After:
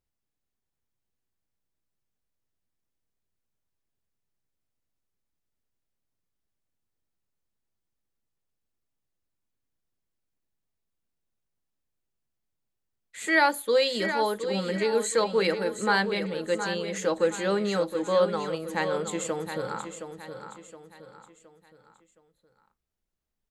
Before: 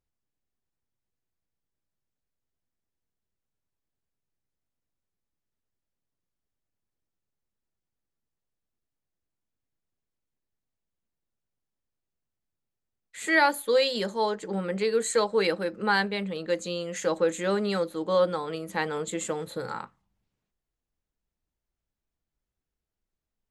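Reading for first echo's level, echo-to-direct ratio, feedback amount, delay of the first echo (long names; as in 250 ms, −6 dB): −9.0 dB, −8.0 dB, 40%, 718 ms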